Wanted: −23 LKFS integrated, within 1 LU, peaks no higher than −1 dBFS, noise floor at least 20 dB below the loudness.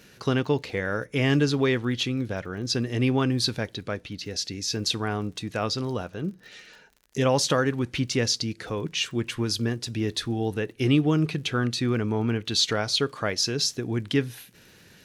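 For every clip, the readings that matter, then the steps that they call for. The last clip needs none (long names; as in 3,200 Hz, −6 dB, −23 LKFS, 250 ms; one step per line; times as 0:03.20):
crackle rate 49 per second; integrated loudness −26.0 LKFS; sample peak −11.0 dBFS; target loudness −23.0 LKFS
→ click removal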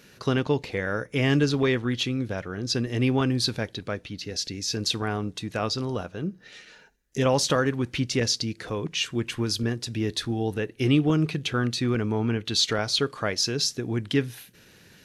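crackle rate 0.066 per second; integrated loudness −26.0 LKFS; sample peak −11.0 dBFS; target loudness −23.0 LKFS
→ level +3 dB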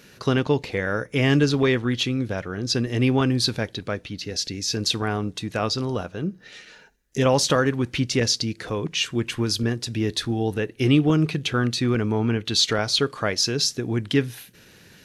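integrated loudness −23.0 LKFS; sample peak −8.0 dBFS; background noise floor −52 dBFS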